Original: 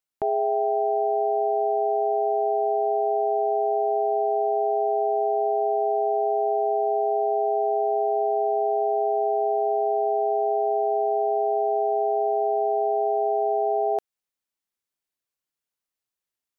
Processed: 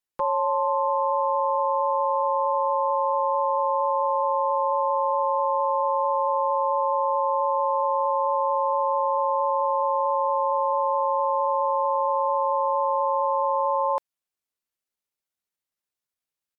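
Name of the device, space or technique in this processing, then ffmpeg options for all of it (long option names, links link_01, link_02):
chipmunk voice: -af "asetrate=58866,aresample=44100,atempo=0.749154"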